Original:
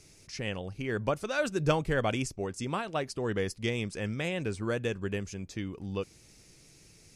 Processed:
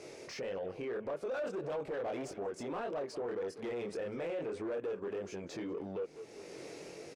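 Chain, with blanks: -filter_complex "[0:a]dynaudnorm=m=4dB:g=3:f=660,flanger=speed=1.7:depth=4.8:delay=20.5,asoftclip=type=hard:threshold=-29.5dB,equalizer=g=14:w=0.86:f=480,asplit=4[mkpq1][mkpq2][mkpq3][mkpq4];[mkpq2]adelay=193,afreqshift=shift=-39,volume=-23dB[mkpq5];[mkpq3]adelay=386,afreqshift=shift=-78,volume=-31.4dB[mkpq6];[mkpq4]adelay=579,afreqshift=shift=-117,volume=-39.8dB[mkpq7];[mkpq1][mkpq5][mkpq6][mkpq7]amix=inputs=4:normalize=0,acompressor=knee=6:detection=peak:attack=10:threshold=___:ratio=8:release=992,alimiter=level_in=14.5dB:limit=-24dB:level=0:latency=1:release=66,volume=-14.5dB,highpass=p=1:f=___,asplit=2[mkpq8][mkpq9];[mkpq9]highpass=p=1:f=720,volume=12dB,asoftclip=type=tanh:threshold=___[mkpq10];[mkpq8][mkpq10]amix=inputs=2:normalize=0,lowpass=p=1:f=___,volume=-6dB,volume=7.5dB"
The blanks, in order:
-34dB, 190, -36.5dB, 1.5k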